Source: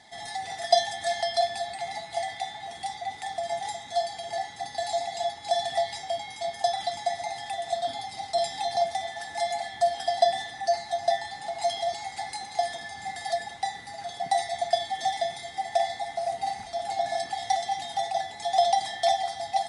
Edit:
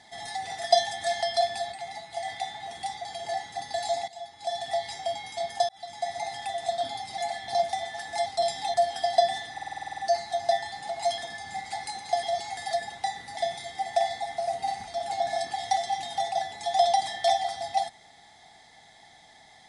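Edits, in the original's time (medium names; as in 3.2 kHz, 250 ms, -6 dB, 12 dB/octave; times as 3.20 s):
1.72–2.25 s: gain -4 dB
3.05–4.09 s: delete
5.12–6.08 s: fade in, from -15.5 dB
6.73–7.24 s: fade in
8.22–8.70 s: swap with 9.48–9.78 s
10.57 s: stutter 0.05 s, 10 plays
11.77–12.11 s: swap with 12.69–13.16 s
13.96–15.16 s: delete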